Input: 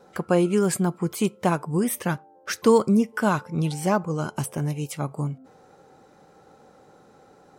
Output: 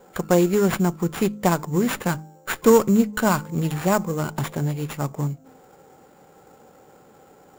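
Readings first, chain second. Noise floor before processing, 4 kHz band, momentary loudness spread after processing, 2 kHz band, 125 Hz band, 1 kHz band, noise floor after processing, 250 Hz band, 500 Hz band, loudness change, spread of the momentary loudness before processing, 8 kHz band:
-55 dBFS, +2.5 dB, 12 LU, +3.0 dB, +2.0 dB, +2.0 dB, -52 dBFS, +2.0 dB, +2.5 dB, +2.0 dB, 11 LU, +1.5 dB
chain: sample-rate reducer 7.1 kHz, jitter 0%; de-hum 52.03 Hz, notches 6; sliding maximum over 5 samples; trim +2.5 dB

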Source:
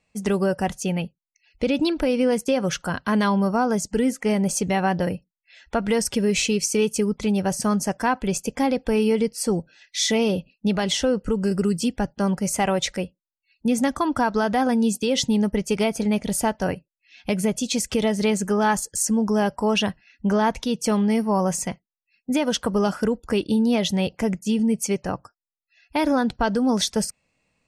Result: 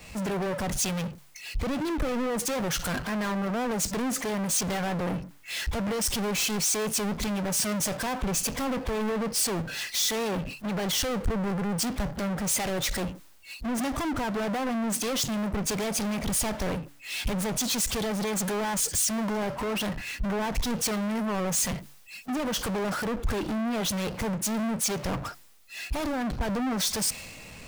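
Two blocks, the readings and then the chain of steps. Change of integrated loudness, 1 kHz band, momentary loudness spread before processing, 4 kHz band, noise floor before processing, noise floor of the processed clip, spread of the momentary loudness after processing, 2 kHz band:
-5.5 dB, -7.0 dB, 7 LU, -2.5 dB, -83 dBFS, -49 dBFS, 7 LU, -3.5 dB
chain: power-law waveshaper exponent 0.35; de-hum 142.5 Hz, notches 2; compression, threshold -21 dBFS, peak gain reduction 8.5 dB; hard clipper -24 dBFS, distortion -13 dB; three bands expanded up and down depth 100%; trim -3.5 dB

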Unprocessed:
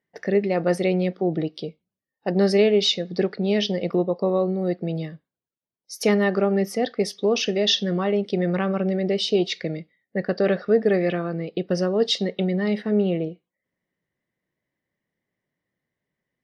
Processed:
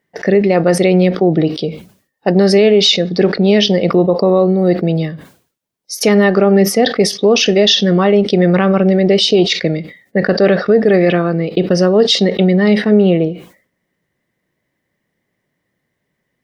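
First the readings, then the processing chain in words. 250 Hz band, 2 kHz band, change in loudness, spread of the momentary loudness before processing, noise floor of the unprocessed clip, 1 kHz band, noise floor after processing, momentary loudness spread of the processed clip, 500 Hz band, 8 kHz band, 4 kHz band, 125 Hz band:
+11.0 dB, +11.0 dB, +10.5 dB, 9 LU, under -85 dBFS, +11.0 dB, -72 dBFS, 7 LU, +10.0 dB, +12.5 dB, +11.0 dB, +11.5 dB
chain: loudness maximiser +13 dB; decay stretcher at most 130 dB/s; trim -1 dB

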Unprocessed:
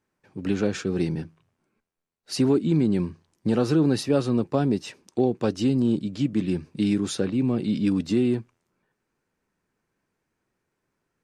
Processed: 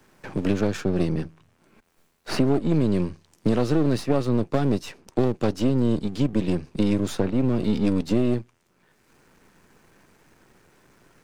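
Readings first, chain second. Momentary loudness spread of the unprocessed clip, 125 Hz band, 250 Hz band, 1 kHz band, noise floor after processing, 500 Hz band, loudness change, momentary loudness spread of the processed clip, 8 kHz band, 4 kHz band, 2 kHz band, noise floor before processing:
9 LU, +2.0 dB, 0.0 dB, +2.5 dB, -65 dBFS, +1.0 dB, +0.5 dB, 7 LU, -3.0 dB, -1.0 dB, +1.5 dB, -80 dBFS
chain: partial rectifier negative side -12 dB; three bands compressed up and down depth 70%; trim +3 dB

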